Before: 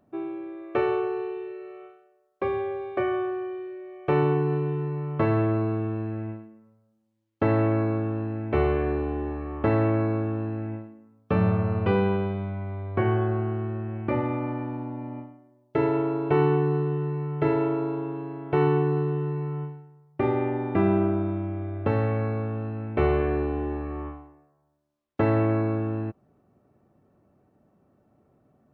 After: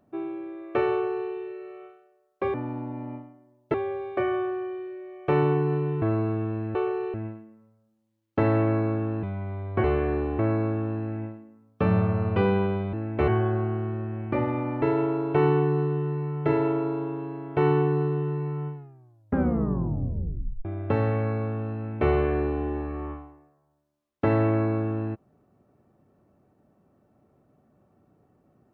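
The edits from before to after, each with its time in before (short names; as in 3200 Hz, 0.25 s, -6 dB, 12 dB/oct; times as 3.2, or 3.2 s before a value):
0.91–1.3 copy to 6.18
4.82–5.45 cut
8.27–8.62 swap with 12.43–13.04
9.17–9.89 cut
14.58–15.78 move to 2.54
19.7 tape stop 1.91 s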